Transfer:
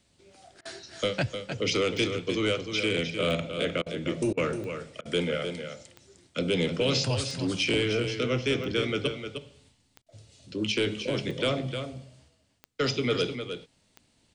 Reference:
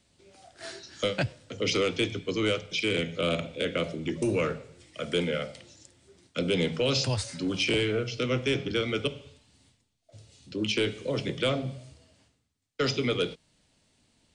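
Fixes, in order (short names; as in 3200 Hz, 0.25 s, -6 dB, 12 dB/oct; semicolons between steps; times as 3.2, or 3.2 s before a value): de-click; interpolate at 0.61/3.82/4.33/5.01/10.02, 42 ms; inverse comb 0.306 s -8 dB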